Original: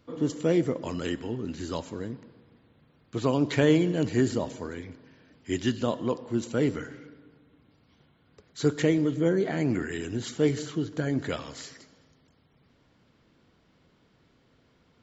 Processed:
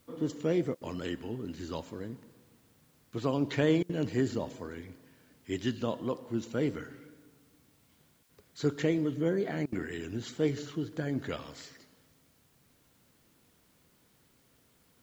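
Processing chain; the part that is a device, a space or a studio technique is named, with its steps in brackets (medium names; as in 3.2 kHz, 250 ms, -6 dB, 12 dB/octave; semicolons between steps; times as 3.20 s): worn cassette (low-pass 6.6 kHz; wow and flutter; level dips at 0.75/3.83/8.23/9.66 s, 62 ms -26 dB; white noise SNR 35 dB); trim -5 dB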